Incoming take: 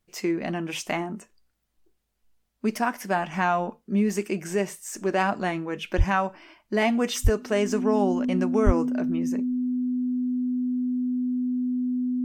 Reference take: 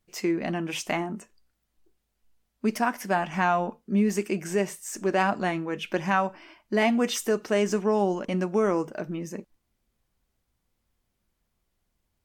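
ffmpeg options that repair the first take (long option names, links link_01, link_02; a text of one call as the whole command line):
ffmpeg -i in.wav -filter_complex "[0:a]bandreject=frequency=250:width=30,asplit=3[link_01][link_02][link_03];[link_01]afade=type=out:start_time=5.97:duration=0.02[link_04];[link_02]highpass=frequency=140:width=0.5412,highpass=frequency=140:width=1.3066,afade=type=in:start_time=5.97:duration=0.02,afade=type=out:start_time=6.09:duration=0.02[link_05];[link_03]afade=type=in:start_time=6.09:duration=0.02[link_06];[link_04][link_05][link_06]amix=inputs=3:normalize=0,asplit=3[link_07][link_08][link_09];[link_07]afade=type=out:start_time=7.23:duration=0.02[link_10];[link_08]highpass=frequency=140:width=0.5412,highpass=frequency=140:width=1.3066,afade=type=in:start_time=7.23:duration=0.02,afade=type=out:start_time=7.35:duration=0.02[link_11];[link_09]afade=type=in:start_time=7.35:duration=0.02[link_12];[link_10][link_11][link_12]amix=inputs=3:normalize=0,asplit=3[link_13][link_14][link_15];[link_13]afade=type=out:start_time=8.65:duration=0.02[link_16];[link_14]highpass=frequency=140:width=0.5412,highpass=frequency=140:width=1.3066,afade=type=in:start_time=8.65:duration=0.02,afade=type=out:start_time=8.77:duration=0.02[link_17];[link_15]afade=type=in:start_time=8.77:duration=0.02[link_18];[link_16][link_17][link_18]amix=inputs=3:normalize=0" out.wav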